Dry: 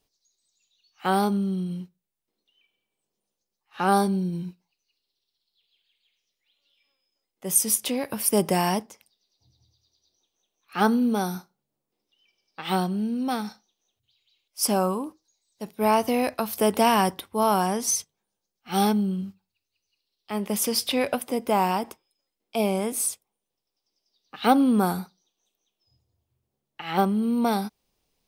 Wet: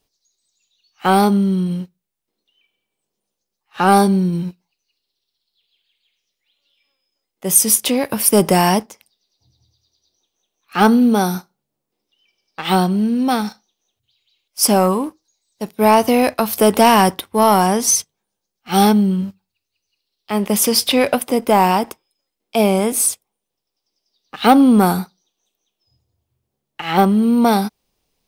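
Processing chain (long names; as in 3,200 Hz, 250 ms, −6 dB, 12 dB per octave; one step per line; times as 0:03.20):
leveller curve on the samples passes 1
level +6 dB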